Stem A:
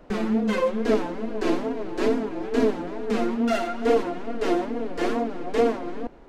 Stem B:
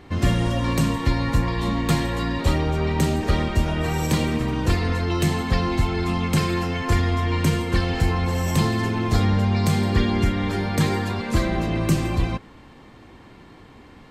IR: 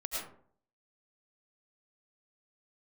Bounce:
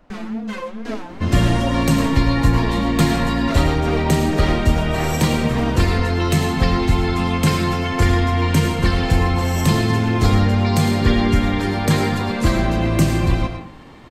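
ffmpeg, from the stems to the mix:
-filter_complex "[0:a]equalizer=frequency=420:width=1.6:gain=-9.5,volume=-1.5dB[link_01];[1:a]adelay=1100,volume=1dB,asplit=2[link_02][link_03];[link_03]volume=-5dB[link_04];[2:a]atrim=start_sample=2205[link_05];[link_04][link_05]afir=irnorm=-1:irlink=0[link_06];[link_01][link_02][link_06]amix=inputs=3:normalize=0"

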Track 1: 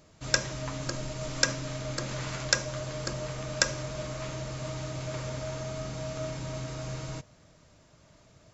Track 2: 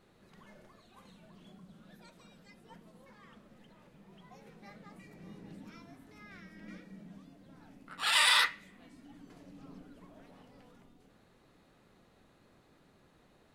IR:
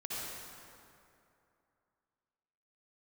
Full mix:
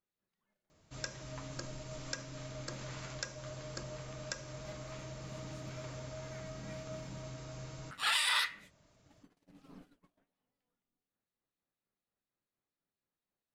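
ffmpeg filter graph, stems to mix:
-filter_complex "[0:a]adelay=700,volume=-9.5dB[link_01];[1:a]agate=range=-28dB:threshold=-51dB:ratio=16:detection=peak,acrossover=split=2300[link_02][link_03];[link_02]aeval=exprs='val(0)*(1-0.5/2+0.5/2*cos(2*PI*4.2*n/s))':channel_layout=same[link_04];[link_03]aeval=exprs='val(0)*(1-0.5/2-0.5/2*cos(2*PI*4.2*n/s))':channel_layout=same[link_05];[link_04][link_05]amix=inputs=2:normalize=0,tiltshelf=frequency=970:gain=-3,volume=0.5dB[link_06];[link_01][link_06]amix=inputs=2:normalize=0,alimiter=limit=-20dB:level=0:latency=1:release=255"

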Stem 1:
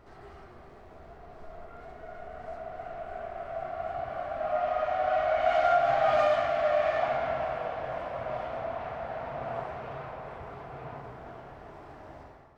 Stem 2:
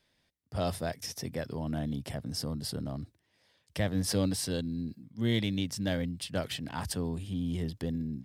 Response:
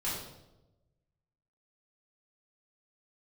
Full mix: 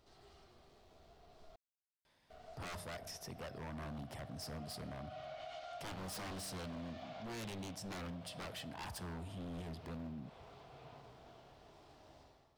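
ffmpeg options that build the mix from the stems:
-filter_complex "[0:a]highshelf=frequency=2600:width_type=q:width=1.5:gain=12,acompressor=threshold=-33dB:ratio=1.5,volume=-14dB,asplit=3[link_01][link_02][link_03];[link_01]atrim=end=1.56,asetpts=PTS-STARTPTS,afade=type=out:start_time=1.556:duration=0.004:curve=hsin[link_04];[link_02]atrim=start=1.56:end=2.3,asetpts=PTS-STARTPTS,volume=0[link_05];[link_03]atrim=start=2.3,asetpts=PTS-STARTPTS,afade=type=in:duration=0.004:curve=hsin[link_06];[link_04][link_05][link_06]concat=n=3:v=0:a=1[link_07];[1:a]equalizer=frequency=930:width_type=o:width=1.2:gain=9.5,adelay=2050,volume=-3dB,asplit=2[link_08][link_09];[link_09]volume=-22dB[link_10];[2:a]atrim=start_sample=2205[link_11];[link_10][link_11]afir=irnorm=-1:irlink=0[link_12];[link_07][link_08][link_12]amix=inputs=3:normalize=0,aeval=exprs='0.0251*(abs(mod(val(0)/0.0251+3,4)-2)-1)':channel_layout=same,alimiter=level_in=16dB:limit=-24dB:level=0:latency=1:release=176,volume=-16dB"

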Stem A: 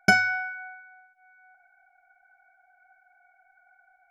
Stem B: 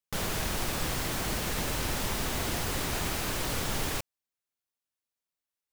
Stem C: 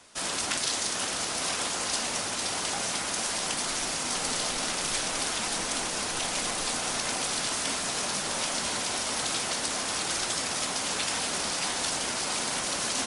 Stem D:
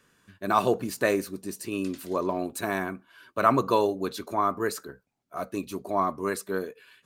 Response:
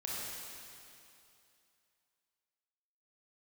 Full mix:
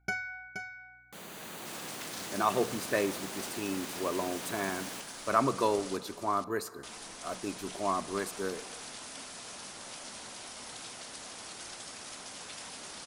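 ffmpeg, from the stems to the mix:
-filter_complex "[0:a]aeval=exprs='val(0)+0.00224*(sin(2*PI*60*n/s)+sin(2*PI*2*60*n/s)/2+sin(2*PI*3*60*n/s)/3+sin(2*PI*4*60*n/s)/4+sin(2*PI*5*60*n/s)/5)':channel_layout=same,aecho=1:1:2.2:0.46,volume=-15.5dB,asplit=2[link_01][link_02];[link_02]volume=-7dB[link_03];[1:a]highpass=frequency=170:width=0.5412,highpass=frequency=170:width=1.3066,bandreject=frequency=5300:width=5.7,dynaudnorm=framelen=110:gausssize=7:maxgain=4dB,adelay=1000,volume=-15.5dB,asplit=2[link_04][link_05];[link_05]volume=-9.5dB[link_06];[2:a]adelay=1500,volume=-15.5dB,asplit=3[link_07][link_08][link_09];[link_07]atrim=end=5.97,asetpts=PTS-STARTPTS,afade=type=out:start_time=5.966:duration=0.004:curve=hsin[link_10];[link_08]atrim=start=5.97:end=6.83,asetpts=PTS-STARTPTS,volume=0[link_11];[link_09]atrim=start=6.83,asetpts=PTS-STARTPTS,afade=type=in:duration=0.004:curve=hsin[link_12];[link_10][link_11][link_12]concat=n=3:v=0:a=1,asplit=2[link_13][link_14];[link_14]volume=-6.5dB[link_15];[3:a]bandreject=frequency=60:width_type=h:width=6,bandreject=frequency=120:width_type=h:width=6,bandreject=frequency=180:width_type=h:width=6,adelay=1900,volume=-6dB,asplit=2[link_16][link_17];[link_17]volume=-18.5dB[link_18];[4:a]atrim=start_sample=2205[link_19];[link_06][link_18]amix=inputs=2:normalize=0[link_20];[link_20][link_19]afir=irnorm=-1:irlink=0[link_21];[link_03][link_15]amix=inputs=2:normalize=0,aecho=0:1:474:1[link_22];[link_01][link_04][link_13][link_16][link_21][link_22]amix=inputs=6:normalize=0"

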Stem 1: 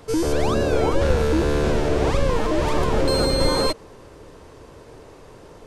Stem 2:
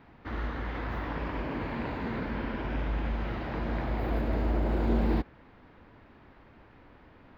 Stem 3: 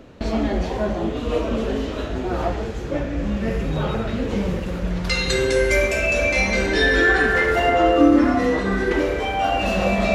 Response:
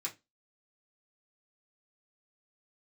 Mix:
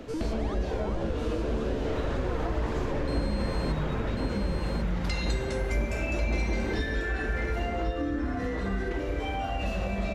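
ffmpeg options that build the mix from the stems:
-filter_complex "[0:a]highshelf=frequency=7200:gain=-11.5,volume=-10.5dB,asplit=2[link_01][link_02];[link_02]volume=-4dB[link_03];[1:a]aphaser=in_gain=1:out_gain=1:delay=3.8:decay=0.54:speed=1.9:type=sinusoidal,adelay=1600,volume=-1.5dB,asplit=2[link_04][link_05];[link_05]volume=-6dB[link_06];[2:a]acrossover=split=140[link_07][link_08];[link_08]acompressor=threshold=-31dB:ratio=4[link_09];[link_07][link_09]amix=inputs=2:normalize=0,volume=1dB,asplit=2[link_10][link_11];[link_11]volume=-12dB[link_12];[link_03][link_06][link_12]amix=inputs=3:normalize=0,aecho=0:1:1093:1[link_13];[link_01][link_04][link_10][link_13]amix=inputs=4:normalize=0,acompressor=threshold=-29dB:ratio=2"

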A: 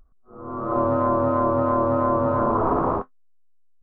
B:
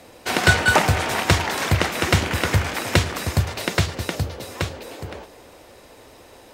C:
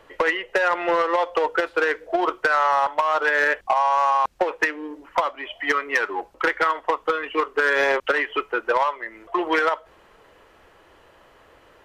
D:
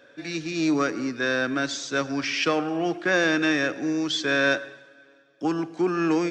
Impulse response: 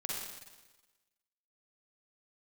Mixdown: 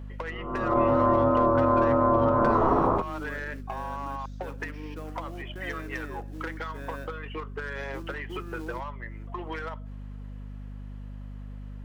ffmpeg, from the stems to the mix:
-filter_complex "[0:a]volume=-1dB[link_01];[2:a]acompressor=threshold=-25dB:ratio=6,volume=-8.5dB[link_02];[3:a]lowpass=frequency=1100:poles=1,acrusher=bits=4:mode=log:mix=0:aa=0.000001,adelay=2500,volume=-17.5dB[link_03];[link_01][link_02][link_03]amix=inputs=3:normalize=0,aeval=exprs='val(0)+0.0126*(sin(2*PI*50*n/s)+sin(2*PI*2*50*n/s)/2+sin(2*PI*3*50*n/s)/3+sin(2*PI*4*50*n/s)/4+sin(2*PI*5*50*n/s)/5)':channel_layout=same"

